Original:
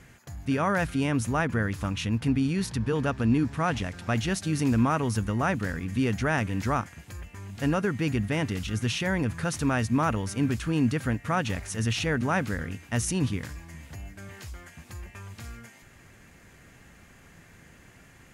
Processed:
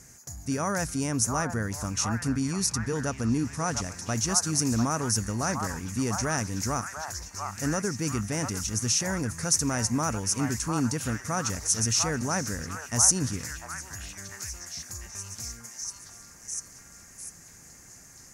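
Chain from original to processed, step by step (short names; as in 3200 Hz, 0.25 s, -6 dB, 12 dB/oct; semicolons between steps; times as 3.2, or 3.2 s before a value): resonant high shelf 4400 Hz +11 dB, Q 3; delay with a stepping band-pass 0.698 s, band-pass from 1000 Hz, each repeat 0.7 oct, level -2 dB; gain -3 dB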